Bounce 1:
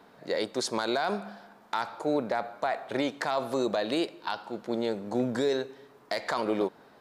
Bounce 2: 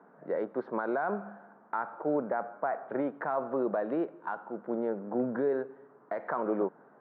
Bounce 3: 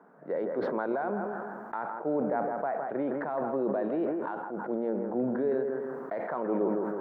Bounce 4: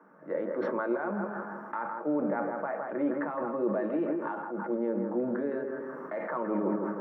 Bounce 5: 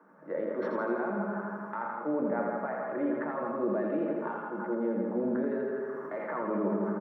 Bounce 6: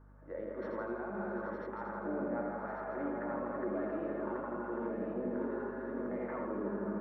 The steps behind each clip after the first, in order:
elliptic band-pass filter 150–1,500 Hz, stop band 60 dB; level −1.5 dB
bucket-brigade delay 161 ms, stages 2,048, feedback 34%, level −9 dB; dynamic equaliser 1,300 Hz, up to −6 dB, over −45 dBFS, Q 1.4; level that may fall only so fast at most 24 dB per second
convolution reverb RT60 0.20 s, pre-delay 3 ms, DRR 6 dB; level −4 dB
repeating echo 83 ms, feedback 58%, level −4.5 dB; level −2 dB
feedback delay that plays each chunk backwards 571 ms, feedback 60%, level −2 dB; mains hum 50 Hz, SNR 20 dB; level −8.5 dB

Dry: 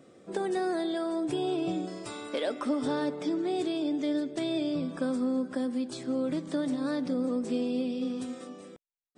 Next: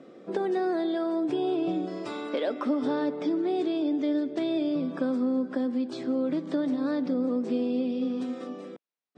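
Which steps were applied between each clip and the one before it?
Chebyshev band-pass filter 230–5,000 Hz, order 2
high-shelf EQ 2,900 Hz −9.5 dB
in parallel at +2.5 dB: downward compressor, threshold −38 dBFS, peak gain reduction 12.5 dB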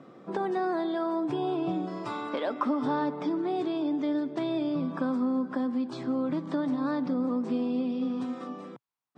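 octave-band graphic EQ 125/500/1,000 Hz +12/−4/+11 dB
level −3 dB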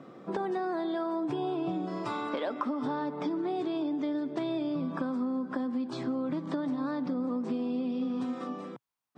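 downward compressor, threshold −30 dBFS, peak gain reduction 7.5 dB
level +1.5 dB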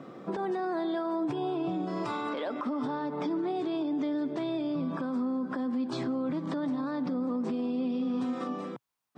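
brickwall limiter −28 dBFS, peak gain reduction 9 dB
level +3.5 dB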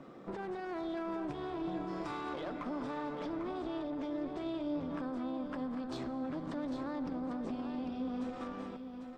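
one-sided soft clipper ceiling −38.5 dBFS
single-tap delay 798 ms −7.5 dB
on a send at −14 dB: convolution reverb RT60 4.7 s, pre-delay 76 ms
on the sum: level −5 dB

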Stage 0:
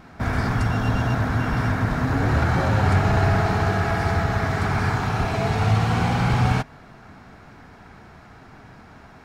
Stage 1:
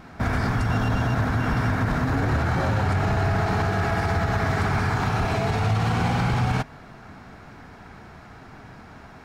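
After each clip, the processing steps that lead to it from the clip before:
brickwall limiter −16 dBFS, peak gain reduction 8 dB
level +1.5 dB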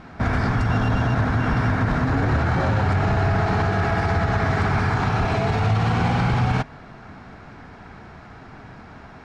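high-frequency loss of the air 70 metres
level +2.5 dB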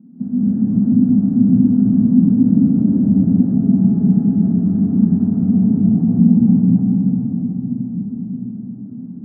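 flat-topped band-pass 220 Hz, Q 3
convolution reverb RT60 5.1 s, pre-delay 119 ms, DRR −10 dB
level +6.5 dB

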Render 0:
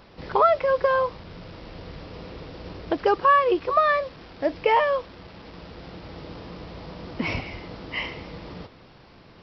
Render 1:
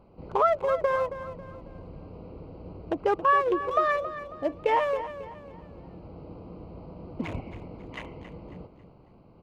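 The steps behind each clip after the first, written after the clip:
adaptive Wiener filter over 25 samples
dynamic equaliser 4,500 Hz, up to −6 dB, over −50 dBFS, Q 1.7
repeating echo 273 ms, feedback 38%, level −12.5 dB
level −3.5 dB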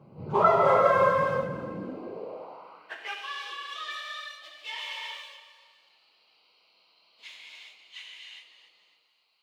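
random phases in long frames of 50 ms
reverb whose tail is shaped and stops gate 430 ms flat, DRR −3.5 dB
high-pass filter sweep 140 Hz → 3,600 Hz, 0:01.60–0:03.32

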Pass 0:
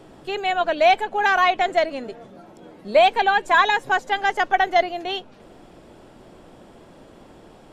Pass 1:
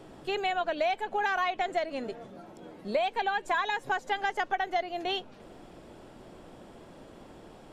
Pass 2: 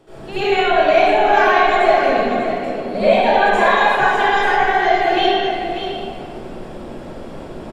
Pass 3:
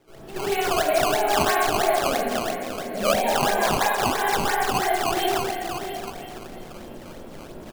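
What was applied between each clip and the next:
downward compressor 6 to 1, threshold −23 dBFS, peak gain reduction 11.5 dB; level −3 dB
single-tap delay 592 ms −9 dB; convolution reverb RT60 2.4 s, pre-delay 69 ms, DRR −19 dB; level −3.5 dB
echo through a band-pass that steps 460 ms, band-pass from 850 Hz, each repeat 1.4 octaves, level −9 dB; sample-and-hold swept by an LFO 14×, swing 160% 3 Hz; level −8 dB

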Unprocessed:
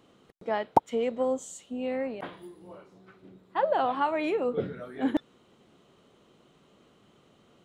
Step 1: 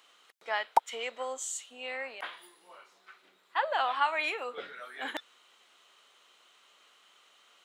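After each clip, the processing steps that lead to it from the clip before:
high-pass filter 1,400 Hz 12 dB per octave
level +7 dB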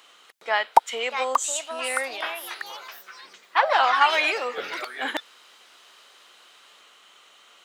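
delay with pitch and tempo change per echo 742 ms, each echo +4 semitones, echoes 3, each echo −6 dB
level +8.5 dB

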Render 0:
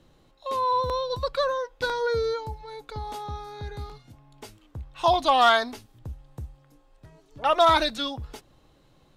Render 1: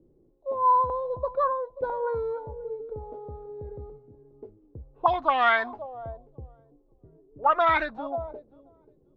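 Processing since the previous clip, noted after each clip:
feedback echo with a high-pass in the loop 535 ms, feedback 24%, high-pass 520 Hz, level −14 dB
envelope-controlled low-pass 380–2,100 Hz up, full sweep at −16 dBFS
level −6 dB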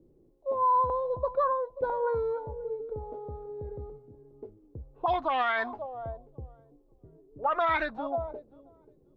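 brickwall limiter −18.5 dBFS, peak gain reduction 10.5 dB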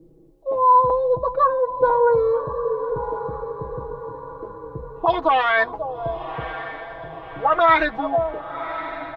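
comb filter 6.2 ms, depth 82%
feedback delay with all-pass diffusion 1,107 ms, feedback 50%, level −12 dB
level +7.5 dB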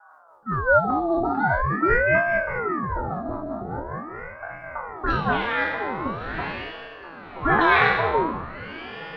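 peak hold with a decay on every bin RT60 1.07 s
rotating-speaker cabinet horn 5 Hz, later 0.6 Hz, at 0:03.82
ring modulator whose carrier an LFO sweeps 650 Hz, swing 75%, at 0.44 Hz
level +1 dB

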